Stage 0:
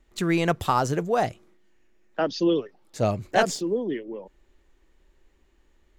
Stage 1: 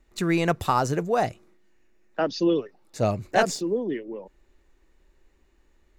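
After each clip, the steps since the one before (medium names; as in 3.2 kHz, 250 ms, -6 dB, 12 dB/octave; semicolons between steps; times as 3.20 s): band-stop 3.2 kHz, Q 10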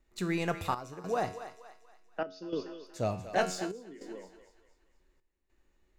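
feedback comb 92 Hz, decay 0.59 s, harmonics all, mix 70%; thinning echo 237 ms, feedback 44%, high-pass 560 Hz, level -10.5 dB; trance gate "xxxxx..xxx" 101 bpm -12 dB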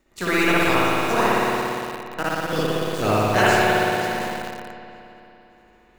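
spectral peaks clipped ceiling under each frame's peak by 15 dB; reverberation RT60 3.2 s, pre-delay 57 ms, DRR -8.5 dB; in parallel at -6.5 dB: bit crusher 5-bit; on the sum: trim +2.5 dB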